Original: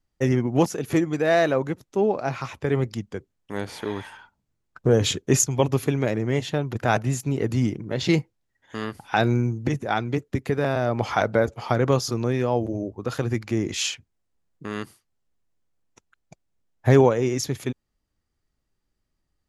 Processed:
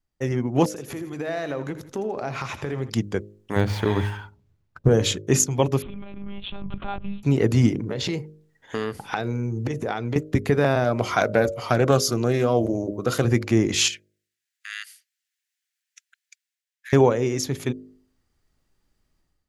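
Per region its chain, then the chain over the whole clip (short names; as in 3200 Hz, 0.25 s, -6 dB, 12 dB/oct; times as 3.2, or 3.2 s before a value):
0.68–2.9 compressor 4:1, threshold -34 dBFS + feedback echo 82 ms, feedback 43%, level -12.5 dB
3.56–4.88 median filter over 5 samples + bell 92 Hz +14 dB 1.2 oct
5.82–7.23 compressor 3:1, threshold -32 dBFS + fixed phaser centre 1800 Hz, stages 6 + monotone LPC vocoder at 8 kHz 200 Hz
7.79–10.16 bell 450 Hz +8 dB 0.23 oct + compressor 12:1, threshold -28 dBFS
10.84–13.25 high shelf 7100 Hz +10.5 dB + notch comb 850 Hz + Doppler distortion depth 0.16 ms
13.88–16.93 steep high-pass 1600 Hz 48 dB/oct + compressor 3:1, threshold -35 dBFS
whole clip: de-hum 51.42 Hz, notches 12; AGC; gain -4 dB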